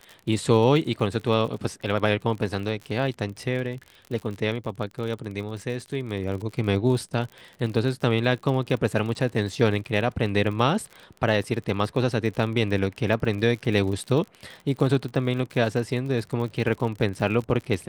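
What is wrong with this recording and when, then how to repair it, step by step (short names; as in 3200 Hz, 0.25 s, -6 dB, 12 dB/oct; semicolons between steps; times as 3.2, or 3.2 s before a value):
crackle 49/s -32 dBFS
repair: de-click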